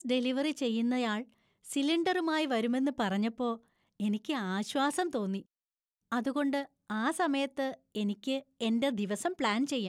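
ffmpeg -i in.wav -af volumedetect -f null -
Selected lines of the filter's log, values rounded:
mean_volume: -32.3 dB
max_volume: -17.1 dB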